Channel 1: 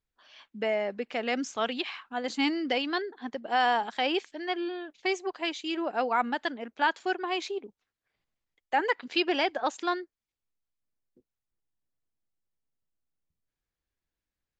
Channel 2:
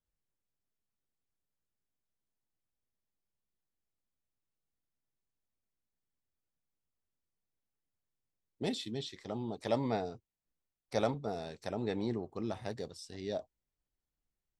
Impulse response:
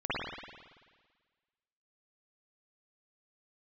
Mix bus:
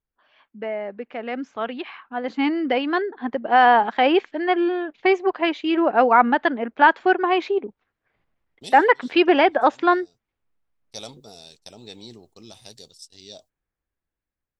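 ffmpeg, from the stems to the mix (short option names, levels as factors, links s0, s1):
-filter_complex "[0:a]lowpass=2000,dynaudnorm=f=630:g=9:m=5.96,volume=1,asplit=2[s0][s1];[1:a]agate=range=0.0501:threshold=0.00447:ratio=16:detection=peak,aexciter=amount=5.4:drive=8.1:freq=2700,volume=0.376[s2];[s1]apad=whole_len=643571[s3];[s2][s3]sidechaincompress=threshold=0.0562:ratio=12:attack=9.9:release=1040[s4];[s0][s4]amix=inputs=2:normalize=0"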